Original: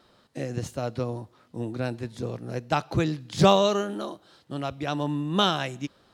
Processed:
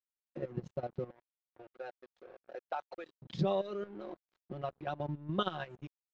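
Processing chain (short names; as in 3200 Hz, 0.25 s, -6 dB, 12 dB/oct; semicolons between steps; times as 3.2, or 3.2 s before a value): formant sharpening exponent 1.5; 1.1–3.22 HPF 550 Hz 24 dB/oct; comb 5.5 ms, depth 89%; level quantiser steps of 9 dB; transient shaper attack +3 dB, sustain -4 dB; compressor 1.5:1, threshold -36 dBFS, peak gain reduction 8 dB; crossover distortion -49.5 dBFS; air absorption 190 m; gain -4 dB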